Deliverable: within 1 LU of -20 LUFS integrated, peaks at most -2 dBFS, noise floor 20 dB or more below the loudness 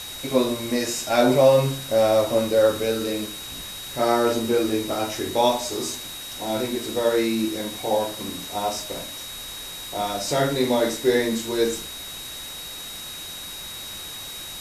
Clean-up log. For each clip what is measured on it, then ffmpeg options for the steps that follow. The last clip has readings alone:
steady tone 3.8 kHz; tone level -36 dBFS; noise floor -36 dBFS; noise floor target -44 dBFS; loudness -24.0 LUFS; peak level -5.5 dBFS; loudness target -20.0 LUFS
-> -af "bandreject=f=3800:w=30"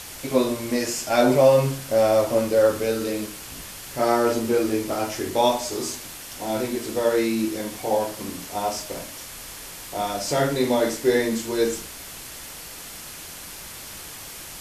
steady tone not found; noise floor -39 dBFS; noise floor target -43 dBFS
-> -af "afftdn=nr=6:nf=-39"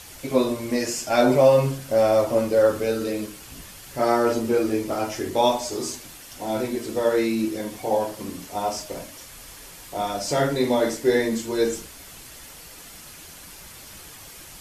noise floor -43 dBFS; loudness -23.0 LUFS; peak level -5.5 dBFS; loudness target -20.0 LUFS
-> -af "volume=1.41"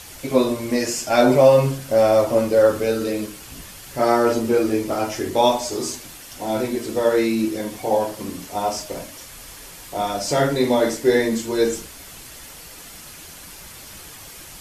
loudness -20.0 LUFS; peak level -2.5 dBFS; noise floor -40 dBFS

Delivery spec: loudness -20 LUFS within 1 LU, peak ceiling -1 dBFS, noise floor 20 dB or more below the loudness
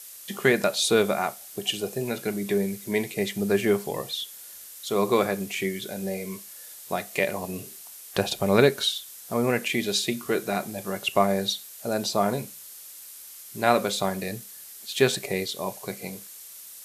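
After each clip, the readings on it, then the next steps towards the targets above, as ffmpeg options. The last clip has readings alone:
noise floor -44 dBFS; noise floor target -47 dBFS; loudness -26.5 LUFS; peak level -4.0 dBFS; loudness target -20.0 LUFS
-> -af "afftdn=nr=6:nf=-44"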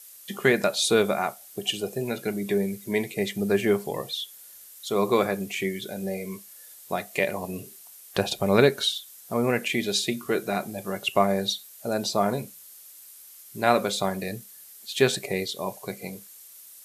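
noise floor -48 dBFS; loudness -26.5 LUFS; peak level -4.0 dBFS; loudness target -20.0 LUFS
-> -af "volume=2.11,alimiter=limit=0.891:level=0:latency=1"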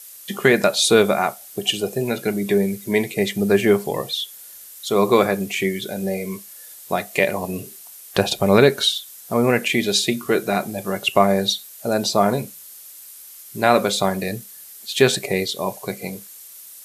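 loudness -20.0 LUFS; peak level -1.0 dBFS; noise floor -42 dBFS

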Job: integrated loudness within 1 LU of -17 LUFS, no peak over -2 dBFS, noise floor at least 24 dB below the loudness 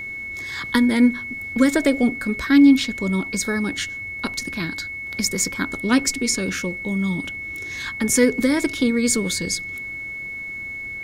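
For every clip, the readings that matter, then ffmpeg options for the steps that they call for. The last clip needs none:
steady tone 2.2 kHz; tone level -29 dBFS; loudness -21.5 LUFS; peak level -5.0 dBFS; loudness target -17.0 LUFS
-> -af "bandreject=f=2200:w=30"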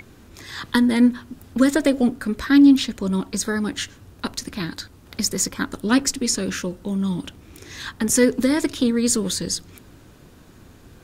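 steady tone not found; loudness -21.0 LUFS; peak level -4.5 dBFS; loudness target -17.0 LUFS
-> -af "volume=1.58,alimiter=limit=0.794:level=0:latency=1"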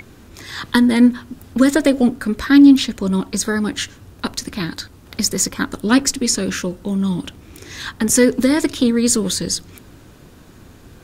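loudness -17.0 LUFS; peak level -2.0 dBFS; noise floor -45 dBFS

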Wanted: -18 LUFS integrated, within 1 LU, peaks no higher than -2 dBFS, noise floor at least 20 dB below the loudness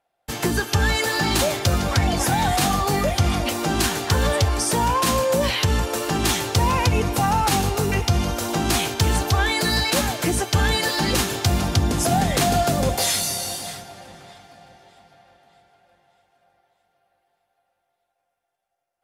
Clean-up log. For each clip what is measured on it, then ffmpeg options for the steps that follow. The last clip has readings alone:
loudness -21.0 LUFS; peak level -7.0 dBFS; loudness target -18.0 LUFS
-> -af "volume=1.41"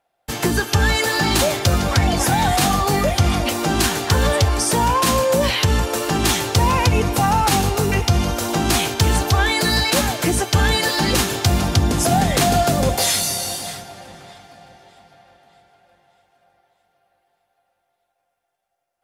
loudness -18.0 LUFS; peak level -4.0 dBFS; noise floor -73 dBFS

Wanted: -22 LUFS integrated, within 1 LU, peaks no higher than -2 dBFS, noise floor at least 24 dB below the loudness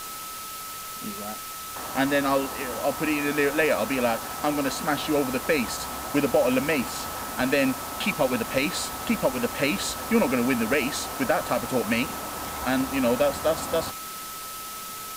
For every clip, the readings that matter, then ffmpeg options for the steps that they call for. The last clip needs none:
steady tone 1.3 kHz; tone level -38 dBFS; noise floor -37 dBFS; noise floor target -50 dBFS; loudness -26.0 LUFS; peak level -10.0 dBFS; loudness target -22.0 LUFS
-> -af "bandreject=f=1300:w=30"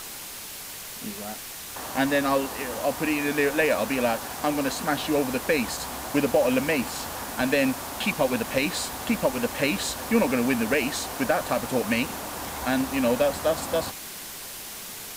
steady tone not found; noise floor -39 dBFS; noise floor target -50 dBFS
-> -af "afftdn=nr=11:nf=-39"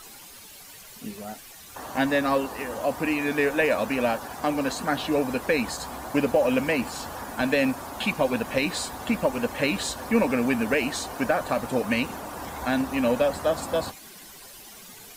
noise floor -46 dBFS; noise floor target -50 dBFS
-> -af "afftdn=nr=6:nf=-46"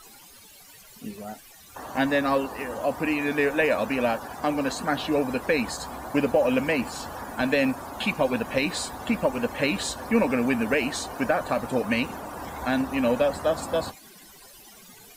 noise floor -50 dBFS; loudness -26.0 LUFS; peak level -10.0 dBFS; loudness target -22.0 LUFS
-> -af "volume=1.58"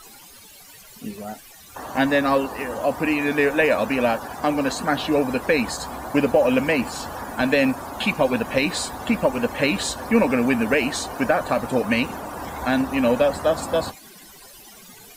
loudness -22.0 LUFS; peak level -6.0 dBFS; noise floor -46 dBFS

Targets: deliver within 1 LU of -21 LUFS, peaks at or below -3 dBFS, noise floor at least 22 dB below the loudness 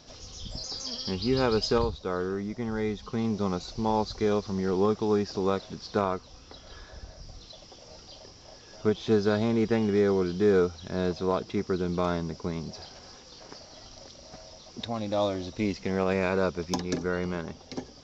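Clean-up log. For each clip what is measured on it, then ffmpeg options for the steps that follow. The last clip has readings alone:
loudness -28.5 LUFS; peak level -13.0 dBFS; loudness target -21.0 LUFS
-> -af "volume=2.37"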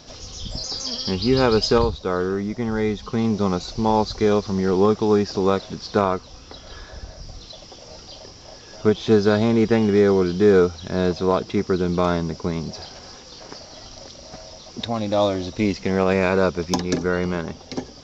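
loudness -21.0 LUFS; peak level -5.5 dBFS; noise floor -43 dBFS

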